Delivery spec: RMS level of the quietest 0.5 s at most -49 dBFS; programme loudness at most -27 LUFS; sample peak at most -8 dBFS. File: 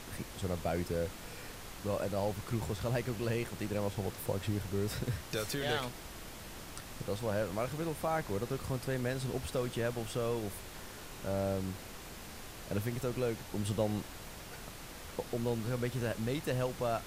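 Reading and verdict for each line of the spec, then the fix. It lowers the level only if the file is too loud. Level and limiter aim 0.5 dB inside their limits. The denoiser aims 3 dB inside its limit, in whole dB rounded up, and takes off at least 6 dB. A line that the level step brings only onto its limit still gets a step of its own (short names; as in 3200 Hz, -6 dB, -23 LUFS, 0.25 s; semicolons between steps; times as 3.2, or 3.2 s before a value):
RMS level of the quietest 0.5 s -47 dBFS: fail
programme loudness -37.0 LUFS: OK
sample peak -19.5 dBFS: OK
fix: denoiser 6 dB, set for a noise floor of -47 dBFS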